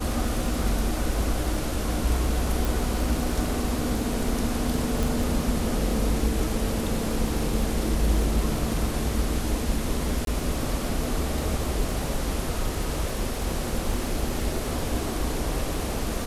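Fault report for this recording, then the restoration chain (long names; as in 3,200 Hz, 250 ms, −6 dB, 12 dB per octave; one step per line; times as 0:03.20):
surface crackle 30 per second −31 dBFS
0:02.65: click
0:05.03: click
0:10.25–0:10.27: drop-out 22 ms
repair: click removal
repair the gap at 0:10.25, 22 ms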